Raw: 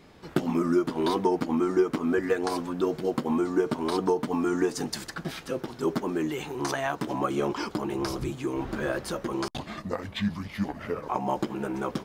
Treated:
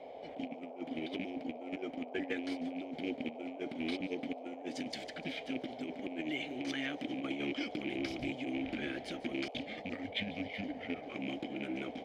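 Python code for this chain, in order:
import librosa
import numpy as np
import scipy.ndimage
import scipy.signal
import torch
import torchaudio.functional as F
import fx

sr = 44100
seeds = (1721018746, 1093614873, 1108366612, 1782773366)

p1 = fx.rattle_buzz(x, sr, strikes_db=-32.0, level_db=-30.0)
p2 = np.sign(p1) * np.maximum(np.abs(p1) - 10.0 ** (-36.5 / 20.0), 0.0)
p3 = p1 + F.gain(torch.from_numpy(p2), -8.0).numpy()
p4 = fx.vowel_filter(p3, sr, vowel='i')
p5 = fx.low_shelf(p4, sr, hz=65.0, db=10.0)
p6 = fx.over_compress(p5, sr, threshold_db=-36.0, ratio=-0.5)
p7 = fx.dmg_noise_band(p6, sr, seeds[0], low_hz=410.0, high_hz=770.0, level_db=-48.0)
p8 = fx.curve_eq(p7, sr, hz=(100.0, 200.0, 2600.0), db=(0, -8, 1))
p9 = p8 + fx.echo_wet_highpass(p8, sr, ms=147, feedback_pct=37, hz=3800.0, wet_db=-16, dry=0)
y = F.gain(torch.from_numpy(p9), 4.0).numpy()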